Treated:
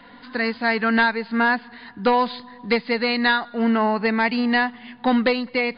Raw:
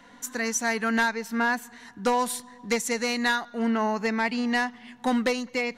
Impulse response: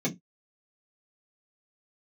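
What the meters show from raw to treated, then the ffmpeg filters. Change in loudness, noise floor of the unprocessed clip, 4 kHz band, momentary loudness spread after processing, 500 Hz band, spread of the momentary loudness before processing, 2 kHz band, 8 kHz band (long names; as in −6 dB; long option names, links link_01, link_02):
+5.5 dB, −52 dBFS, +5.5 dB, 7 LU, +5.5 dB, 7 LU, +5.5 dB, below −40 dB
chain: -af "volume=6dB" -ar 11025 -c:a libmp3lame -b:a 64k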